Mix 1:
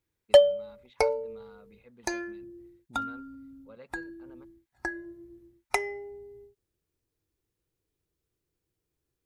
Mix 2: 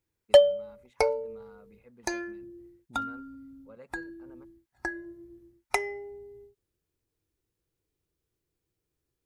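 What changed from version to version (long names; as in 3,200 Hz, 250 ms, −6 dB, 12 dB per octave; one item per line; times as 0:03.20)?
first voice: remove low-pass with resonance 3,800 Hz, resonance Q 3.3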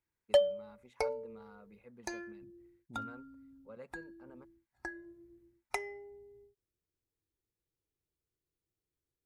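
background −9.0 dB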